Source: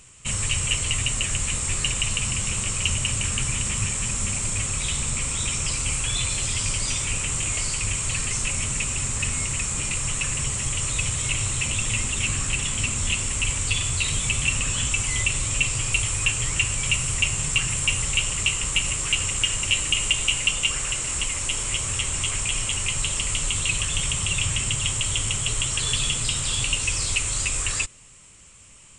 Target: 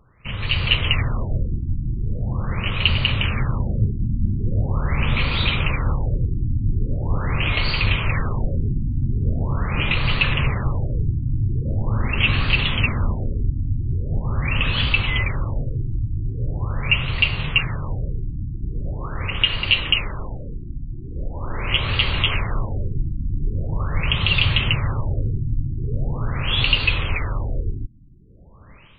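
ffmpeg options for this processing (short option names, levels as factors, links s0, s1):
-af "dynaudnorm=f=350:g=3:m=3.76,afftfilt=real='re*lt(b*sr/1024,330*pow(4800/330,0.5+0.5*sin(2*PI*0.42*pts/sr)))':imag='im*lt(b*sr/1024,330*pow(4800/330,0.5+0.5*sin(2*PI*0.42*pts/sr)))':win_size=1024:overlap=0.75"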